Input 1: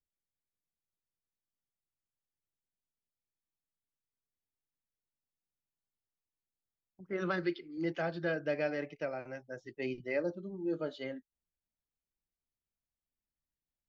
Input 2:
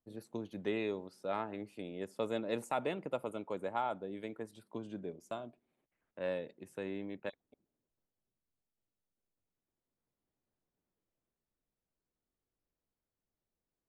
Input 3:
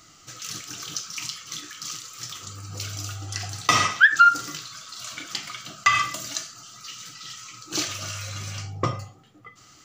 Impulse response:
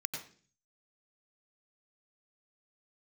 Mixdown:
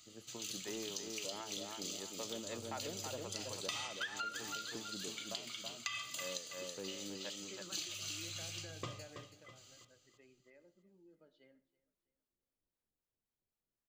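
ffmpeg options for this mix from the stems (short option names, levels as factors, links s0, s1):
-filter_complex "[0:a]acompressor=threshold=0.0126:ratio=6,adelay=400,volume=0.224,afade=t=out:st=9.2:d=0.25:silence=0.298538,asplit=3[s0][s1][s2];[s1]volume=0.158[s3];[s2]volume=0.0891[s4];[1:a]acrossover=split=680[s5][s6];[s5]aeval=exprs='val(0)*(1-0.7/2+0.7/2*cos(2*PI*3.8*n/s))':c=same[s7];[s6]aeval=exprs='val(0)*(1-0.7/2-0.7/2*cos(2*PI*3.8*n/s))':c=same[s8];[s7][s8]amix=inputs=2:normalize=0,asoftclip=type=tanh:threshold=0.0299,volume=0.75,asplit=2[s9][s10];[s10]volume=0.562[s11];[2:a]highshelf=f=2200:t=q:w=1.5:g=9.5,bandreject=f=5500:w=5.1,volume=0.15,asplit=2[s12][s13];[s13]volume=0.266[s14];[3:a]atrim=start_sample=2205[s15];[s3][s15]afir=irnorm=-1:irlink=0[s16];[s4][s11][s14]amix=inputs=3:normalize=0,aecho=0:1:326|652|978|1304|1630|1956:1|0.4|0.16|0.064|0.0256|0.0102[s17];[s0][s9][s12][s16][s17]amix=inputs=5:normalize=0,acompressor=threshold=0.0112:ratio=5"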